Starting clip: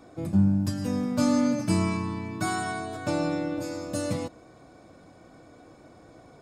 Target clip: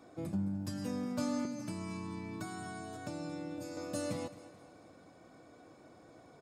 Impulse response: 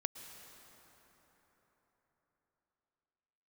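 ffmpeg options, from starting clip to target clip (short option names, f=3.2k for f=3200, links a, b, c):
-filter_complex "[0:a]acompressor=threshold=-27dB:ratio=2.5,highpass=f=130:p=1,aecho=1:1:216|432|648|864:0.15|0.0688|0.0317|0.0146,asettb=1/sr,asplit=3[a][b][c];[a]atrim=end=1.454[d];[b]atrim=start=1.45:end=3.77,asetpts=PTS-STARTPTS,afade=t=in:d=0.004:c=qsin,afade=t=out:st=2.316:d=0.004:c=qsin,acrossover=split=290|4400[e][f][g];[e]acompressor=threshold=-35dB:ratio=4[h];[f]acompressor=threshold=-40dB:ratio=4[i];[g]acompressor=threshold=-49dB:ratio=4[j];[h][i][j]amix=inputs=3:normalize=0[k];[c]atrim=start=3.766[l];[d][k]acrossfade=d=0.004:c1=hsin:c2=qsin[m];[m][l]acrossfade=d=0.004:c1=qsin:c2=hsin,volume=-5.5dB"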